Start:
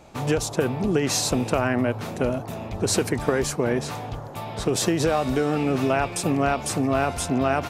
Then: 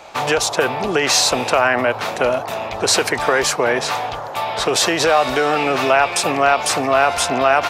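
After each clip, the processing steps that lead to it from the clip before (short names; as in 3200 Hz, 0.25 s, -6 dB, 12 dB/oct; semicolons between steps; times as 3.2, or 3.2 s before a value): three-band isolator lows -19 dB, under 530 Hz, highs -13 dB, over 5500 Hz; in parallel at 0 dB: limiter -23 dBFS, peak gain reduction 11 dB; on the sum: high shelf 9000 Hz +7 dB; gain +8 dB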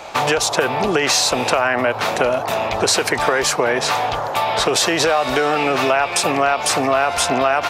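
compressor 3:1, threshold -21 dBFS, peak gain reduction 9 dB; gain +5.5 dB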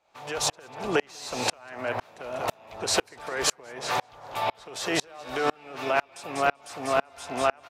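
on a send: feedback echo 0.194 s, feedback 30%, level -10.5 dB; on the sum: dB-ramp tremolo swelling 2 Hz, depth 36 dB; gain -3.5 dB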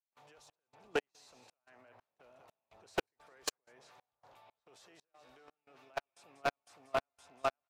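one-sided fold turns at -15.5 dBFS; level quantiser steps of 22 dB; upward expander 1.5:1, over -59 dBFS; gain -6 dB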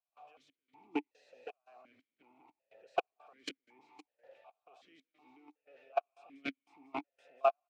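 echo 0.514 s -14 dB; vowel sequencer 2.7 Hz; gain +11.5 dB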